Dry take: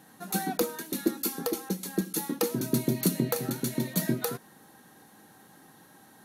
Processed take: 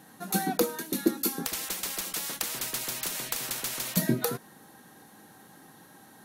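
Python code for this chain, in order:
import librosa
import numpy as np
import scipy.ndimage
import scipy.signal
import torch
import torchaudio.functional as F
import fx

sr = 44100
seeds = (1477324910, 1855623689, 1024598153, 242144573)

y = fx.spectral_comp(x, sr, ratio=10.0, at=(1.45, 3.97))
y = y * librosa.db_to_amplitude(2.0)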